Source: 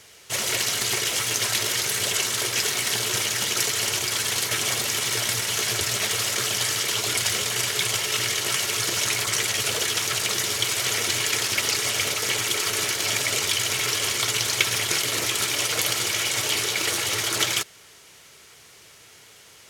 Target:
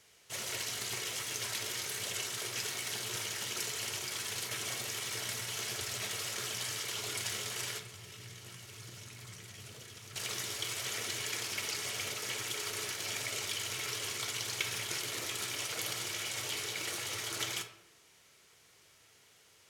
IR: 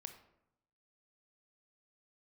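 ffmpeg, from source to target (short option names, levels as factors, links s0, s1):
-filter_complex "[0:a]asettb=1/sr,asplit=3[s0][s1][s2];[s0]atrim=end=7.784[s3];[s1]atrim=start=7.78:end=10.16,asetpts=PTS-STARTPTS,afade=t=in:d=0.004:c=qsin,afade=t=out:st=2.376:d=0.004:c=qsin,acrossover=split=230[s4][s5];[s5]acompressor=threshold=0.0178:ratio=10[s6];[s4][s6]amix=inputs=2:normalize=0[s7];[s2]atrim=start=10.156[s8];[s3][s7]acrossfade=d=0.004:c1=hsin:c2=qsin[s9];[s9][s8]acrossfade=d=0.004:c1=qsin:c2=hsin[s10];[1:a]atrim=start_sample=2205[s11];[s10][s11]afir=irnorm=-1:irlink=0,volume=0.398"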